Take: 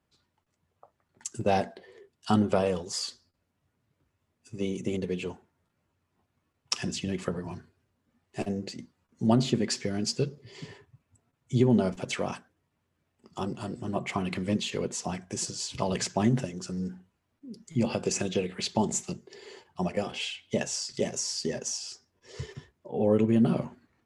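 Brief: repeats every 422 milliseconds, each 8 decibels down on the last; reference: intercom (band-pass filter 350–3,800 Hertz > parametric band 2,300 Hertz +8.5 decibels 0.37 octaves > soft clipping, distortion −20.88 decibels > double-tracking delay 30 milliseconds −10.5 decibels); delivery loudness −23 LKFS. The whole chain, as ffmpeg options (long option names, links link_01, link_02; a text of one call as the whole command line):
ffmpeg -i in.wav -filter_complex "[0:a]highpass=350,lowpass=3800,equalizer=frequency=2300:width_type=o:width=0.37:gain=8.5,aecho=1:1:422|844|1266|1688|2110:0.398|0.159|0.0637|0.0255|0.0102,asoftclip=threshold=-17.5dB,asplit=2[link_01][link_02];[link_02]adelay=30,volume=-10.5dB[link_03];[link_01][link_03]amix=inputs=2:normalize=0,volume=11dB" out.wav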